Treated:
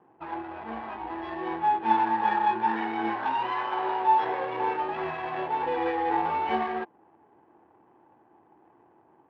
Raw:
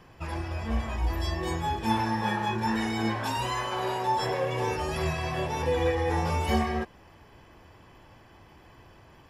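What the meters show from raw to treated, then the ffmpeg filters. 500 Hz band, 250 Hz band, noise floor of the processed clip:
-2.5 dB, -3.5 dB, -61 dBFS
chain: -af "adynamicsmooth=sensitivity=7.5:basefreq=510,highpass=320,equalizer=f=330:t=q:w=4:g=5,equalizer=f=560:t=q:w=4:g=-6,equalizer=f=840:t=q:w=4:g=9,equalizer=f=1.5k:t=q:w=4:g=3,lowpass=f=3.3k:w=0.5412,lowpass=f=3.3k:w=1.3066,volume=-1dB"

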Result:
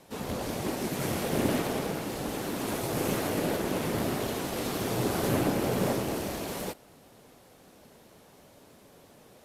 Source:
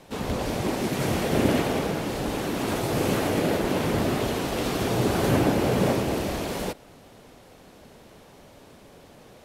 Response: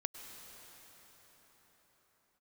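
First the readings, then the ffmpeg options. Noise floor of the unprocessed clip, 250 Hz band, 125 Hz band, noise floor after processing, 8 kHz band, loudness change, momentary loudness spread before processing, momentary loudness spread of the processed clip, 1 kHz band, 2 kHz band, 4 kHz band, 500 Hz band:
-51 dBFS, -5.5 dB, -6.5 dB, -56 dBFS, -1.5 dB, -5.0 dB, 7 LU, 7 LU, -5.0 dB, -5.5 dB, -5.0 dB, -5.5 dB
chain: -filter_complex "[0:a]aeval=exprs='0.422*(cos(1*acos(clip(val(0)/0.422,-1,1)))-cos(1*PI/2))+0.0237*(cos(6*acos(clip(val(0)/0.422,-1,1)))-cos(6*PI/2))':c=same,bass=f=250:g=1,treble=f=4k:g=-11,acrossover=split=3500[a][b];[b]crystalizer=i=4:c=0[c];[a][c]amix=inputs=2:normalize=0,lowshelf=f=62:g=-10.5,volume=-5dB" -ar 32000 -c:a aac -b:a 64k

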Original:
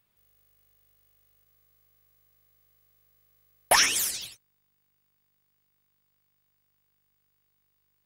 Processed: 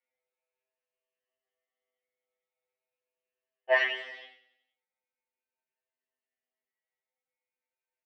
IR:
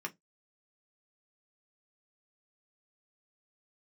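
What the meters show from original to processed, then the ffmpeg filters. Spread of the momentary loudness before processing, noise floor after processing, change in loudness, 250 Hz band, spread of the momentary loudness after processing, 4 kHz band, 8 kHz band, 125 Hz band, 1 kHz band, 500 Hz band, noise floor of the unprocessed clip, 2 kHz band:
17 LU, under -85 dBFS, -4.5 dB, n/a, 19 LU, -11.0 dB, under -35 dB, under -30 dB, -9.0 dB, +3.5 dB, -74 dBFS, -0.5 dB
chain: -filter_complex "[0:a]afftfilt=real='re*pow(10,10/40*sin(2*PI*(1.4*log(max(b,1)*sr/1024/100)/log(2)-(0.41)*(pts-256)/sr)))':imag='im*pow(10,10/40*sin(2*PI*(1.4*log(max(b,1)*sr/1024/100)/log(2)-(0.41)*(pts-256)/sr)))':win_size=1024:overlap=0.75,agate=range=-8dB:threshold=-52dB:ratio=16:detection=peak,tiltshelf=f=660:g=8.5,bandreject=f=1k:w=16,flanger=delay=19.5:depth=4.7:speed=0.47,highpass=f=470:w=0.5412,highpass=f=470:w=1.3066,equalizer=f=520:t=q:w=4:g=5,equalizer=f=830:t=q:w=4:g=9,equalizer=f=1.2k:t=q:w=4:g=-6,equalizer=f=2k:t=q:w=4:g=8,equalizer=f=2.9k:t=q:w=4:g=8,lowpass=f=2.9k:w=0.5412,lowpass=f=2.9k:w=1.3066,asplit=2[a][b];[b]adelay=16,volume=-7dB[c];[a][c]amix=inputs=2:normalize=0,aecho=1:1:93|186|279|372|465:0.141|0.0819|0.0475|0.0276|0.016,afftfilt=real='re*2.45*eq(mod(b,6),0)':imag='im*2.45*eq(mod(b,6),0)':win_size=2048:overlap=0.75,volume=1.5dB"

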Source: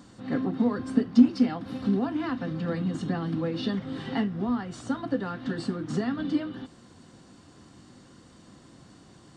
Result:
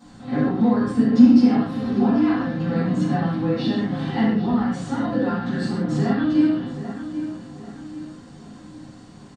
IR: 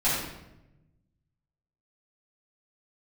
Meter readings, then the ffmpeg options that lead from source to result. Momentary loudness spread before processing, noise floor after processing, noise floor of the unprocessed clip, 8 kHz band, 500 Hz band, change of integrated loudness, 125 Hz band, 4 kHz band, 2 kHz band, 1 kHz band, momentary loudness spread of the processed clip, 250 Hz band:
10 LU, -44 dBFS, -54 dBFS, n/a, +6.0 dB, +7.5 dB, +8.0 dB, +4.5 dB, +6.5 dB, +8.5 dB, 16 LU, +8.0 dB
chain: -filter_complex "[0:a]asplit=2[a][b];[b]adelay=789,lowpass=f=3.6k:p=1,volume=-11dB,asplit=2[c][d];[d]adelay=789,lowpass=f=3.6k:p=1,volume=0.42,asplit=2[e][f];[f]adelay=789,lowpass=f=3.6k:p=1,volume=0.42,asplit=2[g][h];[h]adelay=789,lowpass=f=3.6k:p=1,volume=0.42[i];[a][c][e][g][i]amix=inputs=5:normalize=0[j];[1:a]atrim=start_sample=2205,afade=t=out:st=0.22:d=0.01,atrim=end_sample=10143[k];[j][k]afir=irnorm=-1:irlink=0,volume=-6.5dB"

